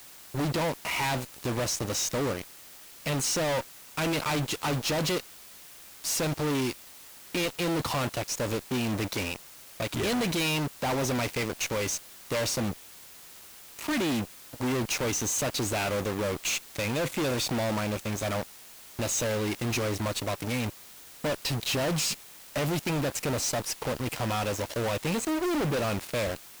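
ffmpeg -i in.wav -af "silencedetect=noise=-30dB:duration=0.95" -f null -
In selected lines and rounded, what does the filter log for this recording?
silence_start: 12.73
silence_end: 13.79 | silence_duration: 1.06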